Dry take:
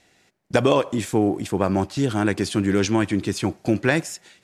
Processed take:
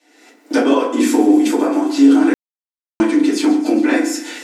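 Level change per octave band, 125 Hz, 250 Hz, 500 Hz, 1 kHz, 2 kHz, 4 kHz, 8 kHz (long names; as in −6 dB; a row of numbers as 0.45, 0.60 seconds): below −15 dB, +10.0 dB, +3.0 dB, +4.0 dB, +2.5 dB, +3.0 dB, +5.0 dB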